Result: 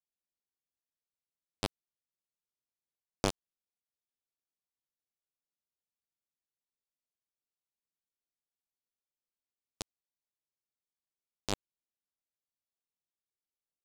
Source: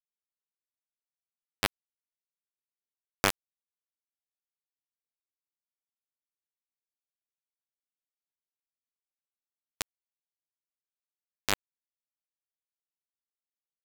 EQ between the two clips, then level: distance through air 65 m; peaking EQ 1.8 kHz -15 dB 1.6 oct; +1.0 dB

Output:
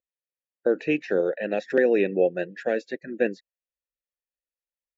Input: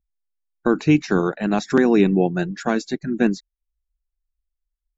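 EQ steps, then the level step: vowel filter e; +8.5 dB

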